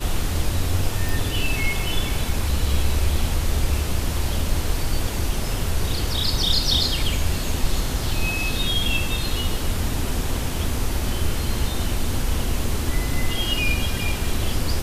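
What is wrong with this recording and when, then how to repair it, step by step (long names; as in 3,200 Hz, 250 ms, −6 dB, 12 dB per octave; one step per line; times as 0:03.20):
0:01.09: click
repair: click removal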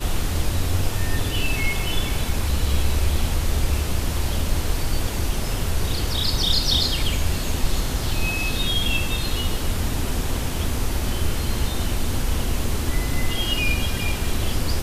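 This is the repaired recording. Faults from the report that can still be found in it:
none of them is left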